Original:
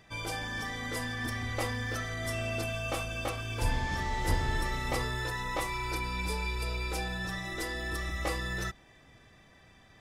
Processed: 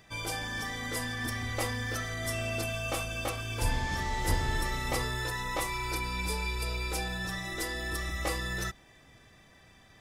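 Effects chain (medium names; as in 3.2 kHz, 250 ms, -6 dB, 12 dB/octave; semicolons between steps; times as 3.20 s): treble shelf 5.8 kHz +6.5 dB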